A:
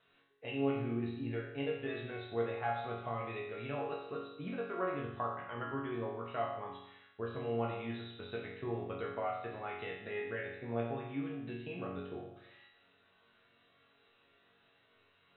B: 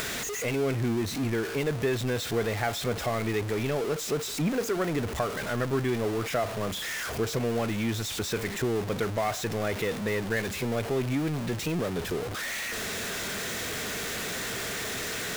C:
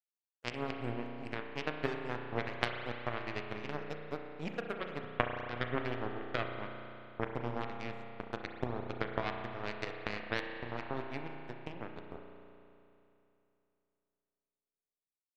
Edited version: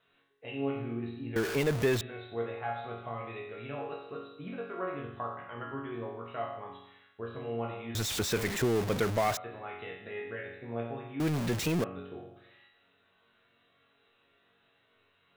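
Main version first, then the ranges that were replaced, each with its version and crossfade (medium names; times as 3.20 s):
A
1.36–2.01 s: from B
7.95–9.37 s: from B
11.20–11.84 s: from B
not used: C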